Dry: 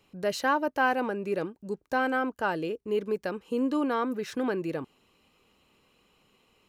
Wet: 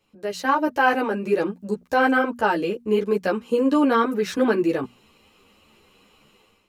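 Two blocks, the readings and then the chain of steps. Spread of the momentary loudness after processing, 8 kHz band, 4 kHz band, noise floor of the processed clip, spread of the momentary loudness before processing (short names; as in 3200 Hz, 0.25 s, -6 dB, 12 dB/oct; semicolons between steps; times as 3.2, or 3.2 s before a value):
8 LU, n/a, +6.0 dB, -61 dBFS, 7 LU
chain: notches 60/120/180/240 Hz; AGC gain up to 12 dB; ensemble effect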